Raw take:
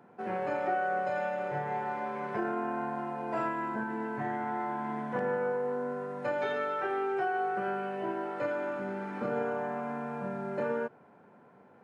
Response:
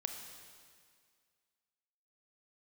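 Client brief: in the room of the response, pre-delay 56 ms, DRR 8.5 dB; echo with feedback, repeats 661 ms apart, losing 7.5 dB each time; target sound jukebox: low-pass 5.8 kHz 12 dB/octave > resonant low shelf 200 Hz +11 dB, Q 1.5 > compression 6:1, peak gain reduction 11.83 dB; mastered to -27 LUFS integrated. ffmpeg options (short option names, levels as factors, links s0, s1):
-filter_complex "[0:a]aecho=1:1:661|1322|1983|2644|3305:0.422|0.177|0.0744|0.0312|0.0131,asplit=2[s0][s1];[1:a]atrim=start_sample=2205,adelay=56[s2];[s1][s2]afir=irnorm=-1:irlink=0,volume=0.376[s3];[s0][s3]amix=inputs=2:normalize=0,lowpass=5800,lowshelf=f=200:t=q:w=1.5:g=11,acompressor=threshold=0.0158:ratio=6,volume=4.22"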